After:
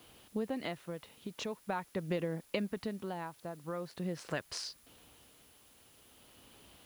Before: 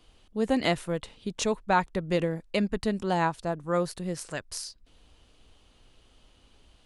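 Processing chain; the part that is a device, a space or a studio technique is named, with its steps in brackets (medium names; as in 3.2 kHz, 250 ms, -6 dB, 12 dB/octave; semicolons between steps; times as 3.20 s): medium wave at night (band-pass 110–4000 Hz; compression 6:1, threshold -36 dBFS, peak gain reduction 17 dB; tremolo 0.44 Hz, depth 58%; whistle 10 kHz -72 dBFS; white noise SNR 24 dB); trim +4 dB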